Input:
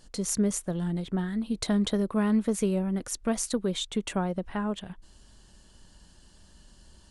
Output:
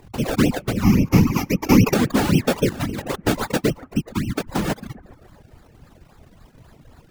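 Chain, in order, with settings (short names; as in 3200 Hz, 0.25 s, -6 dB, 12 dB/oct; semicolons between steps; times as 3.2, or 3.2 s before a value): 3.7–4.34 brick-wall FIR band-stop 240–7700 Hz; decimation with a swept rate 30×, swing 100% 3.7 Hz; 0.83–1.94 ripple EQ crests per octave 0.8, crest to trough 16 dB; on a send: analogue delay 0.137 s, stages 2048, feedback 61%, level -15.5 dB; on the sum: whisperiser; reverb removal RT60 0.58 s; 2.69–3.16 negative-ratio compressor -33 dBFS, ratio -0.5; gain +8 dB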